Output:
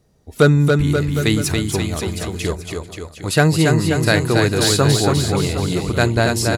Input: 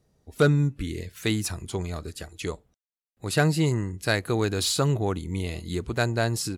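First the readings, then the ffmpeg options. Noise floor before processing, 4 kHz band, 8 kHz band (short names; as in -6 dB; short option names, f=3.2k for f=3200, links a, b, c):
under -85 dBFS, +9.5 dB, +9.5 dB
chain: -af "aecho=1:1:280|532|758.8|962.9|1147:0.631|0.398|0.251|0.158|0.1,volume=7.5dB"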